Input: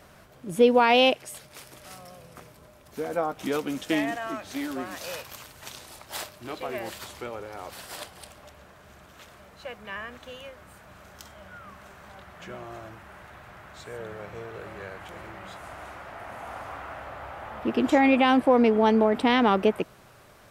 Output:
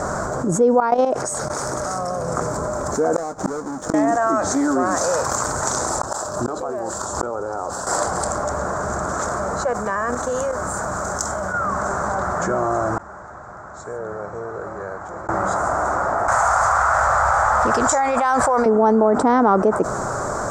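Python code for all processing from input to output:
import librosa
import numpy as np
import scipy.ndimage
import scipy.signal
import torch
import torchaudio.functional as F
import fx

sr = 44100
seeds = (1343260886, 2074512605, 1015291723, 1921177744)

y = fx.chain(x, sr, fx.notch(hz=7400.0, q=12.0),
    fx.level_steps(step_db=18), at=(0.8, 2.28))
y = fx.chain(y, sr, fx.halfwave_hold(),
    fx.gate_flip(shuts_db=-25.0, range_db=-37),
    fx.notch(hz=7700.0, q=18.0), at=(3.16, 3.94))
y = fx.chain(y, sr, fx.peak_eq(hz=2100.0, db=-12.0, octaves=0.34),
    fx.gate_flip(shuts_db=-32.0, range_db=-42),
    fx.env_flatten(amount_pct=50), at=(6.0, 7.87))
y = fx.chain(y, sr, fx.high_shelf(hz=5500.0, db=8.5),
    fx.level_steps(step_db=11), at=(9.73, 11.54))
y = fx.chain(y, sr, fx.lowpass(hz=7100.0, slope=12),
    fx.gate_flip(shuts_db=-41.0, range_db=-31), at=(12.97, 15.29))
y = fx.chain(y, sr, fx.tone_stack(knobs='10-0-10'),
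    fx.env_flatten(amount_pct=100), at=(16.28, 18.66))
y = fx.curve_eq(y, sr, hz=(110.0, 660.0, 1400.0, 2800.0, 7400.0, 11000.0), db=(0, 6, 6, -26, 10, -20))
y = fx.env_flatten(y, sr, amount_pct=70)
y = F.gain(torch.from_numpy(y), -3.5).numpy()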